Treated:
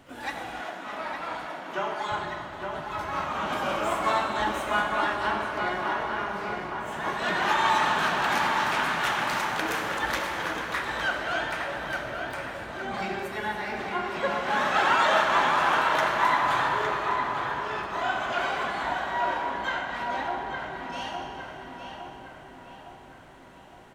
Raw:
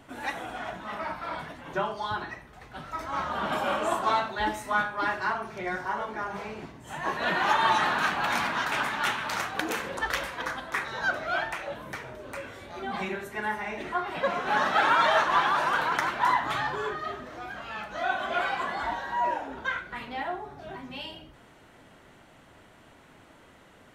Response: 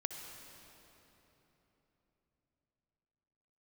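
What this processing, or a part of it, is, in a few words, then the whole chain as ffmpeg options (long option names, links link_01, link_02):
shimmer-style reverb: -filter_complex "[0:a]asplit=2[link_01][link_02];[link_02]asetrate=88200,aresample=44100,atempo=0.5,volume=-12dB[link_03];[link_01][link_03]amix=inputs=2:normalize=0[link_04];[1:a]atrim=start_sample=2205[link_05];[link_04][link_05]afir=irnorm=-1:irlink=0,asettb=1/sr,asplit=3[link_06][link_07][link_08];[link_06]atrim=end=0.614[link_09];[link_07]atrim=start=0.61:end=2.12,asetpts=PTS-STARTPTS,afade=type=in:duration=0.004:curve=qsin,afade=type=out:start_time=1.506:duration=0.004:curve=qsin,highpass=240[link_10];[link_08]atrim=start=2.116[link_11];[link_09][link_10]acrossfade=duration=0.004:curve1=hsin:curve2=qsin[link_12];[link_12][link_11]acrossfade=duration=0.004:curve1=qsin:curve2=hsin,asplit=2[link_13][link_14];[link_14]adelay=861,lowpass=frequency=2900:poles=1,volume=-5dB,asplit=2[link_15][link_16];[link_16]adelay=861,lowpass=frequency=2900:poles=1,volume=0.51,asplit=2[link_17][link_18];[link_18]adelay=861,lowpass=frequency=2900:poles=1,volume=0.51,asplit=2[link_19][link_20];[link_20]adelay=861,lowpass=frequency=2900:poles=1,volume=0.51,asplit=2[link_21][link_22];[link_22]adelay=861,lowpass=frequency=2900:poles=1,volume=0.51,asplit=2[link_23][link_24];[link_24]adelay=861,lowpass=frequency=2900:poles=1,volume=0.51[link_25];[link_13][link_15][link_17][link_19][link_21][link_23][link_25]amix=inputs=7:normalize=0"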